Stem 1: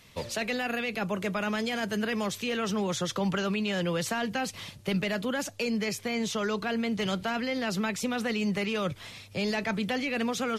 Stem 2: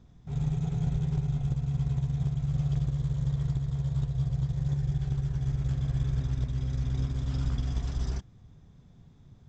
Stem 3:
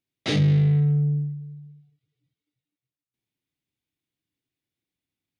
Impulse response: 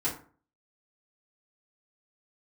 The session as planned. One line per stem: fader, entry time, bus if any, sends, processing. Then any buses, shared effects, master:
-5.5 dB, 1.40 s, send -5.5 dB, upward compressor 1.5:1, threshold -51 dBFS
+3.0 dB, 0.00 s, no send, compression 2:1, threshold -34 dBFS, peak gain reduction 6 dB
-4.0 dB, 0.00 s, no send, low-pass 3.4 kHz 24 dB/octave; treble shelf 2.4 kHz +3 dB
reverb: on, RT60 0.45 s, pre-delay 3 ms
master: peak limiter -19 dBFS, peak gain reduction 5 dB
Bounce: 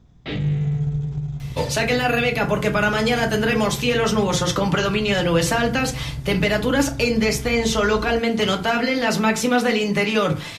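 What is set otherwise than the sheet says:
stem 1 -5.5 dB -> +6.0 dB; master: missing peak limiter -19 dBFS, peak gain reduction 5 dB

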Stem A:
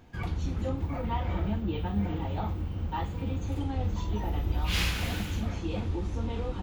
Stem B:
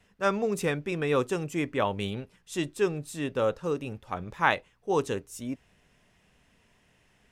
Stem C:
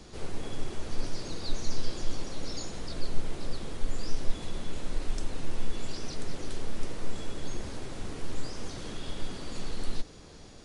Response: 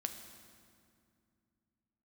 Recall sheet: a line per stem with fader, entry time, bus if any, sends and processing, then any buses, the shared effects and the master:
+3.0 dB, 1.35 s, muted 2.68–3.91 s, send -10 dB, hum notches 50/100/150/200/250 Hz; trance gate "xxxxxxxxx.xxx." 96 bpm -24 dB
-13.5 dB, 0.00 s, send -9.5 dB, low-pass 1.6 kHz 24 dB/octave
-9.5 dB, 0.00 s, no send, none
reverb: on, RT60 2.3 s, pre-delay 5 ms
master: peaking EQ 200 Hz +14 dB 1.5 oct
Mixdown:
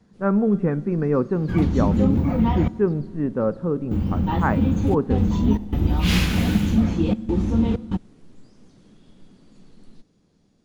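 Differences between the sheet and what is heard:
stem B -13.5 dB -> -2.5 dB; stem C -9.5 dB -> -19.5 dB

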